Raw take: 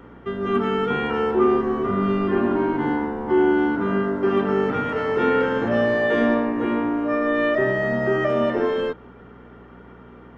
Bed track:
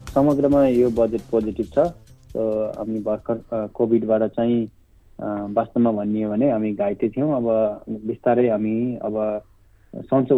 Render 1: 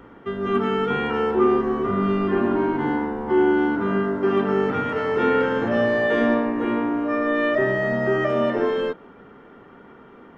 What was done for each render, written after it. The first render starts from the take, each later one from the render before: de-hum 60 Hz, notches 11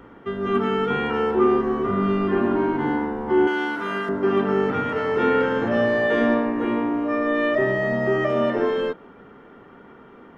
3.47–4.09 tilt +4.5 dB/oct; 6.66–8.37 notch 1500 Hz, Q 6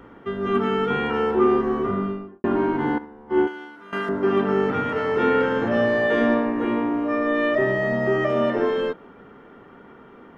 1.77–2.44 studio fade out; 2.98–3.93 upward expander 2.5:1, over -26 dBFS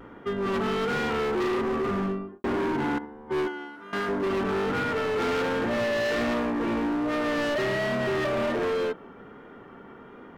hard clip -24.5 dBFS, distortion -7 dB; vibrato 1.3 Hz 33 cents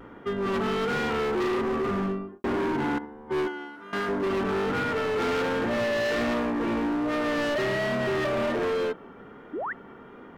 9.53–9.73 painted sound rise 260–2100 Hz -31 dBFS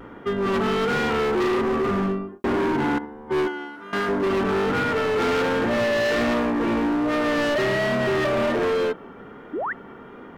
gain +4.5 dB

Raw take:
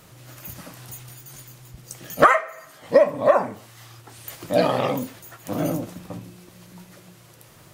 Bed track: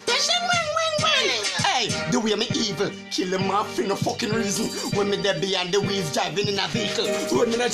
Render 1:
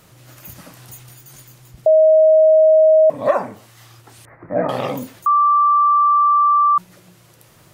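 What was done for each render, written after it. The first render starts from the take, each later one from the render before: 1.86–3.1 bleep 630 Hz -7.5 dBFS; 4.25–4.69 elliptic low-pass 2000 Hz; 5.26–6.78 bleep 1170 Hz -10.5 dBFS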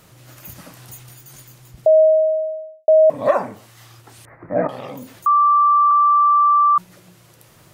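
2–2.88 fade out quadratic; 4.67–5.16 compressor 2:1, threshold -36 dBFS; 5.91–6.76 LPF 2900 Hz 24 dB/oct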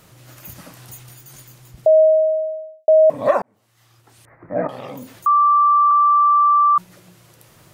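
3.42–4.97 fade in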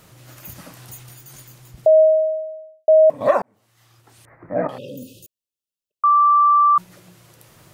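1.9–3.21 upward expander, over -23 dBFS; 4.78–6.04 brick-wall FIR band-stop 610–2500 Hz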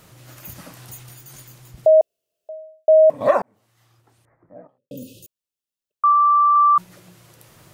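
2.01–2.49 room tone; 3.31–4.91 studio fade out; 6.12–6.56 air absorption 190 m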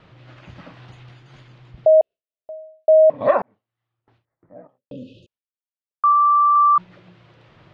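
gate with hold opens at -47 dBFS; LPF 3600 Hz 24 dB/oct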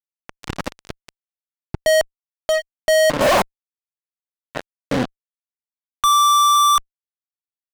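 fuzz box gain 44 dB, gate -35 dBFS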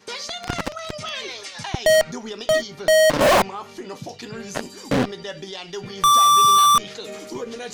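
add bed track -10.5 dB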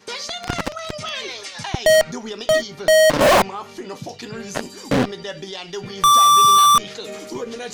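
gain +2 dB

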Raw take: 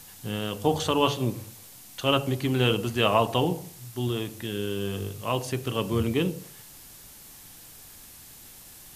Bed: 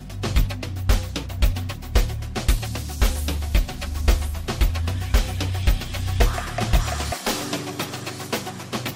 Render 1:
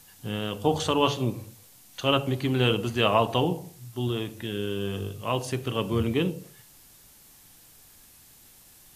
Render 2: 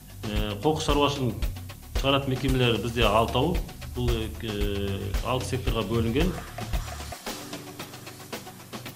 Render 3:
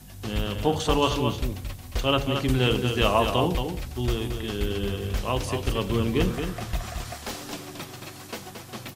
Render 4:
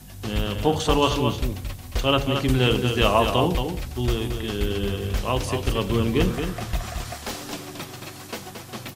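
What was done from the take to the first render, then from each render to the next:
noise print and reduce 6 dB
add bed -10.5 dB
echo 0.224 s -6.5 dB
gain +2.5 dB

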